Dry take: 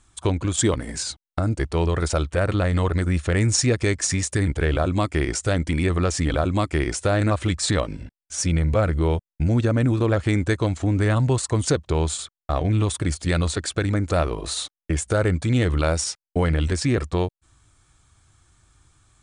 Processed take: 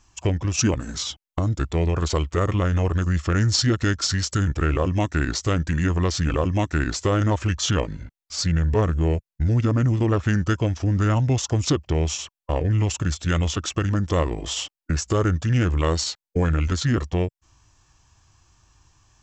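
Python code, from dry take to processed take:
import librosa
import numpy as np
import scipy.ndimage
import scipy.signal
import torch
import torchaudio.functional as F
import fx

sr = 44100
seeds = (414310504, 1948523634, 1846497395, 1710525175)

y = fx.formant_shift(x, sr, semitones=-4)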